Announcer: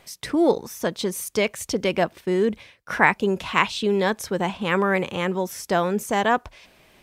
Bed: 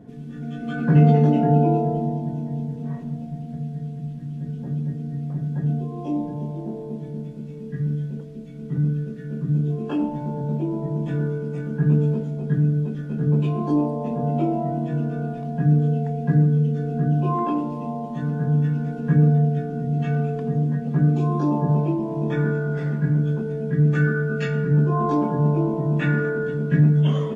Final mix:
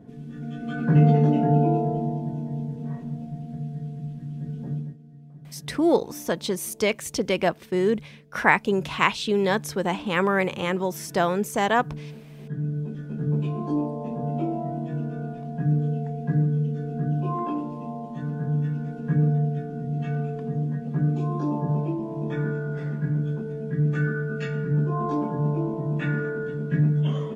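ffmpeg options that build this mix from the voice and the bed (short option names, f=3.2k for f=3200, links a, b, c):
-filter_complex "[0:a]adelay=5450,volume=-1dB[a];[1:a]volume=10.5dB,afade=t=out:st=4.73:d=0.24:silence=0.16788,afade=t=in:st=12.28:d=0.67:silence=0.223872[b];[a][b]amix=inputs=2:normalize=0"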